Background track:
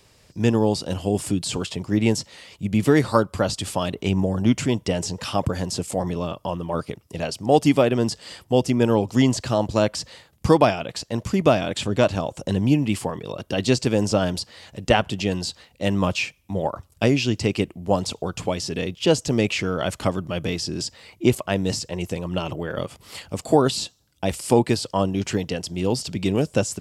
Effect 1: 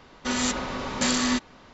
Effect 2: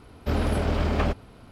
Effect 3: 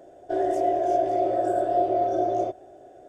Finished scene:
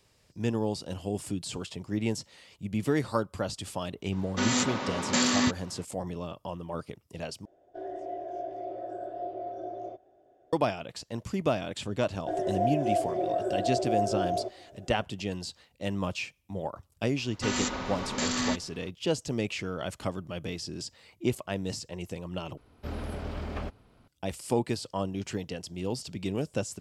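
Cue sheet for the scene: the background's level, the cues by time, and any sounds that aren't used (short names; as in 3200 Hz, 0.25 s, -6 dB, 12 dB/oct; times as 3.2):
background track -10 dB
4.12 add 1 -0.5 dB + Chebyshev high-pass 170 Hz
7.45 replace with 3 -14 dB + LPF 4900 Hz
11.97 add 3 -2.5 dB + endless flanger 3.8 ms -3 Hz
17.17 add 1 -4 dB + limiter -15 dBFS
22.57 replace with 2 -11.5 dB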